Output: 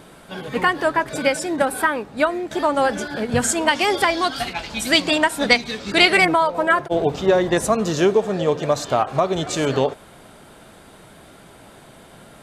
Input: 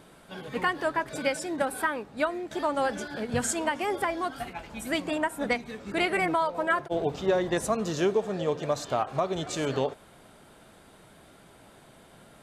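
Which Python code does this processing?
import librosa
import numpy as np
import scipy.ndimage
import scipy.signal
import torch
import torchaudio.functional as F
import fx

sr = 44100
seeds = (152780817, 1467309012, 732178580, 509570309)

y = fx.peak_eq(x, sr, hz=4400.0, db=13.5, octaves=1.5, at=(3.68, 6.25))
y = y * 10.0 ** (8.5 / 20.0)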